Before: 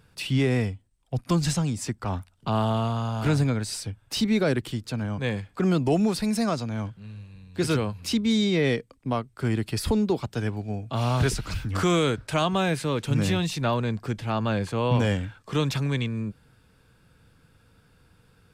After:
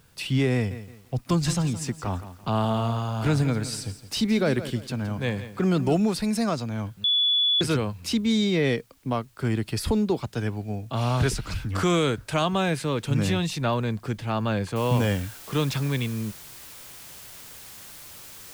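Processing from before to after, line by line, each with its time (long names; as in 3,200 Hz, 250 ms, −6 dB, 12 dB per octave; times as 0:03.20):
0:00.54–0:05.97: feedback echo at a low word length 168 ms, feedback 35%, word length 8 bits, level −12.5 dB
0:07.04–0:07.61: beep over 3,430 Hz −18.5 dBFS
0:14.76: noise floor change −64 dB −44 dB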